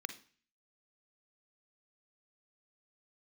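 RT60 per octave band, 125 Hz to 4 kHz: 0.55, 0.50, 0.40, 0.45, 0.50, 0.50 seconds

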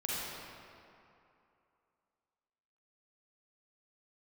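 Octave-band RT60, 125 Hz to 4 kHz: 2.4, 2.5, 2.6, 2.8, 2.3, 1.6 seconds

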